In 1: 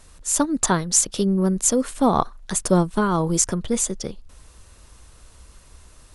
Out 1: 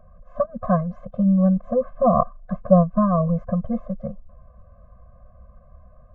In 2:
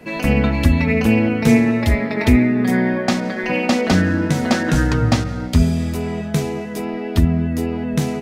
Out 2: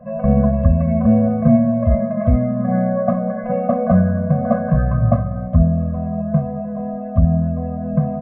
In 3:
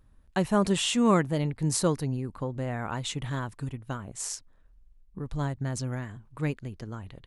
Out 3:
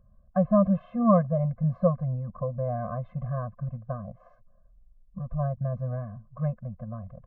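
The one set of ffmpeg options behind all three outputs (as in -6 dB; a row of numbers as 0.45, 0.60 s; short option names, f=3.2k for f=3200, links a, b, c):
-af "lowpass=f=1k:w=0.5412,lowpass=f=1k:w=1.3066,lowshelf=f=190:g=-7.5,afftfilt=real='re*eq(mod(floor(b*sr/1024/250),2),0)':imag='im*eq(mod(floor(b*sr/1024/250),2),0)':win_size=1024:overlap=0.75,volume=7.5dB"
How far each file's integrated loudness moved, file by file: -0.5, 0.0, +1.5 LU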